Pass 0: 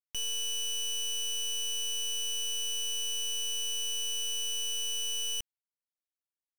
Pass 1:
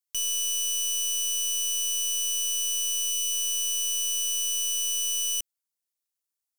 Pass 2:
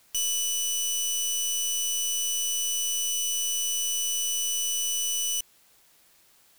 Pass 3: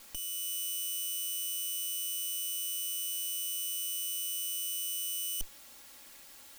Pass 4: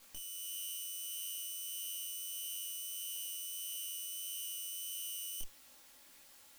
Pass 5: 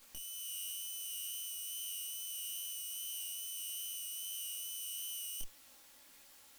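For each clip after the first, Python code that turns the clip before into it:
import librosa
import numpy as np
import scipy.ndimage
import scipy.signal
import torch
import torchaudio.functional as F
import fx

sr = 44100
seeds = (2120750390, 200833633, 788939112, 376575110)

y1 = fx.spec_erase(x, sr, start_s=3.1, length_s=0.22, low_hz=590.0, high_hz=1800.0)
y1 = fx.bass_treble(y1, sr, bass_db=-5, treble_db=11)
y1 = y1 * librosa.db_to_amplitude(-1.0)
y2 = fx.rider(y1, sr, range_db=10, speed_s=0.5)
y2 = fx.quant_dither(y2, sr, seeds[0], bits=10, dither='triangular')
y3 = fx.lower_of_two(y2, sr, delay_ms=3.6)
y3 = fx.over_compress(y3, sr, threshold_db=-35.0, ratio=-0.5)
y3 = y3 * librosa.db_to_amplitude(1.5)
y4 = fx.detune_double(y3, sr, cents=55)
y4 = y4 * librosa.db_to_amplitude(-3.0)
y5 = fx.wow_flutter(y4, sr, seeds[1], rate_hz=2.1, depth_cents=20.0)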